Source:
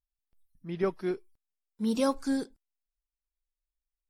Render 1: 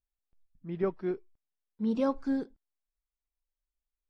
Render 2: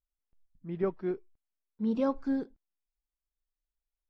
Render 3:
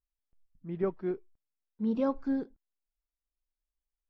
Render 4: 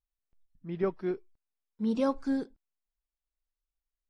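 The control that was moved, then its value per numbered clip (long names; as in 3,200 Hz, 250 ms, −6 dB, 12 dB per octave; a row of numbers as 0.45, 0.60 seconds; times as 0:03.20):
head-to-tape spacing loss, at 10 kHz: 29, 37, 45, 20 decibels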